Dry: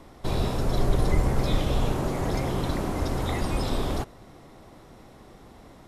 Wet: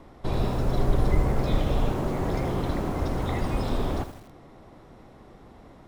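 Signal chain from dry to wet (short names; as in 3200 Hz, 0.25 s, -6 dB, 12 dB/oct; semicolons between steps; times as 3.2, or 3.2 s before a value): high shelf 3800 Hz -10.5 dB; lo-fi delay 80 ms, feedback 55%, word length 7-bit, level -11.5 dB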